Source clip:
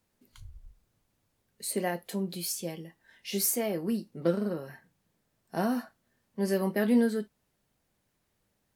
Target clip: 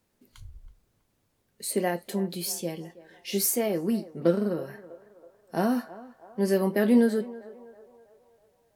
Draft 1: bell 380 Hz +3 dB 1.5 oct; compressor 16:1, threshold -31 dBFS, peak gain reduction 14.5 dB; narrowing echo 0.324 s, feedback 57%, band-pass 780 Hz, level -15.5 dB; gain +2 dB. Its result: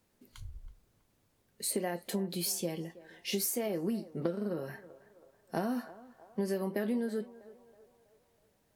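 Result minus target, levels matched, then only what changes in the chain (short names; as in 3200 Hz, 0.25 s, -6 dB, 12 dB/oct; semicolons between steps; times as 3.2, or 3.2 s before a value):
compressor: peak gain reduction +14.5 dB
remove: compressor 16:1, threshold -31 dBFS, peak gain reduction 14.5 dB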